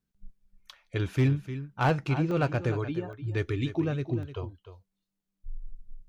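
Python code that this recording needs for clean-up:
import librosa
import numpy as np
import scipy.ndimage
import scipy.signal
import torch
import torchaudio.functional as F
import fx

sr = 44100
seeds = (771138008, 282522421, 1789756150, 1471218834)

y = fx.fix_declip(x, sr, threshold_db=-17.5)
y = fx.fix_interpolate(y, sr, at_s=(2.31, 3.13, 4.23, 5.2), length_ms=1.7)
y = fx.fix_echo_inverse(y, sr, delay_ms=302, level_db=-12.5)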